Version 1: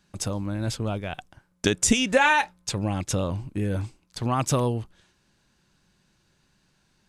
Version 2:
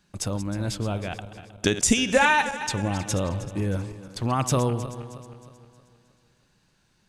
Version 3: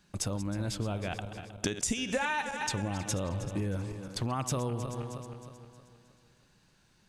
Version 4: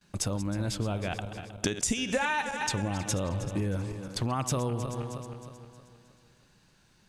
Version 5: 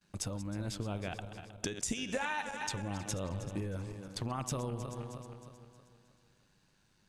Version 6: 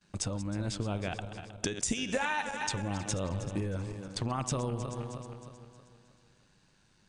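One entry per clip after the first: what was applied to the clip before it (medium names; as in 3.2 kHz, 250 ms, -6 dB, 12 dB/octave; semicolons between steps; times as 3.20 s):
backward echo that repeats 157 ms, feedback 65%, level -12.5 dB
compression 4:1, threshold -30 dBFS, peak gain reduction 14 dB
gate with hold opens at -57 dBFS; trim +2.5 dB
AM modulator 100 Hz, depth 30%; trim -5 dB
brick-wall FIR low-pass 10 kHz; trim +4 dB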